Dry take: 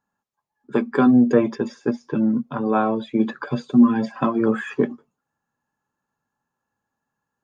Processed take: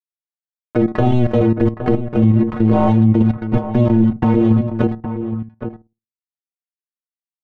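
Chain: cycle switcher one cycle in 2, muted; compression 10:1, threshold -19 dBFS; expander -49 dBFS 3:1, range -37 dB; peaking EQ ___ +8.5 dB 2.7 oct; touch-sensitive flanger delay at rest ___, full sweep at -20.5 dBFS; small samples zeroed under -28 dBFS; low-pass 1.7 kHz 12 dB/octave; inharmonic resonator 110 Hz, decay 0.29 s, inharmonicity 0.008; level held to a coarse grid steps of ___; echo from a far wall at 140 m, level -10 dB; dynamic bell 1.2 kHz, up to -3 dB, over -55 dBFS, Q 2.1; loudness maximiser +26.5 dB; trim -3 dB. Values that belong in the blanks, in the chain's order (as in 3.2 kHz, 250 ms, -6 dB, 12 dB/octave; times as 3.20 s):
74 Hz, 9.6 ms, 12 dB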